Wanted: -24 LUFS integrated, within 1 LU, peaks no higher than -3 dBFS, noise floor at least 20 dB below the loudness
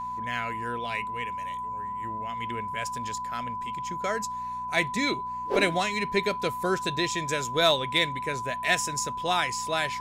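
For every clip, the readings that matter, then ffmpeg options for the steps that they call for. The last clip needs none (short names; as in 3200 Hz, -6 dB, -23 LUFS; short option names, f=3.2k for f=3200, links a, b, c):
hum 60 Hz; harmonics up to 240 Hz; hum level -48 dBFS; steady tone 1000 Hz; tone level -31 dBFS; loudness -28.0 LUFS; peak -11.0 dBFS; loudness target -24.0 LUFS
-> -af "bandreject=f=60:t=h:w=4,bandreject=f=120:t=h:w=4,bandreject=f=180:t=h:w=4,bandreject=f=240:t=h:w=4"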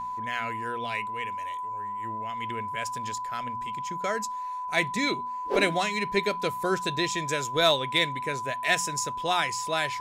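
hum none; steady tone 1000 Hz; tone level -31 dBFS
-> -af "bandreject=f=1k:w=30"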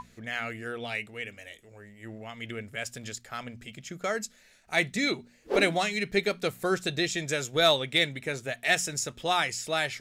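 steady tone none; loudness -28.5 LUFS; peak -11.0 dBFS; loudness target -24.0 LUFS
-> -af "volume=4.5dB"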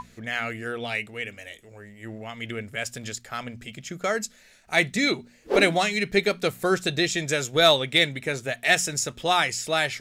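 loudness -24.0 LUFS; peak -6.5 dBFS; noise floor -55 dBFS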